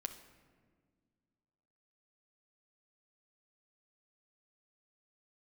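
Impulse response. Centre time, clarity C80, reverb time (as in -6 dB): 14 ms, 12.5 dB, 1.8 s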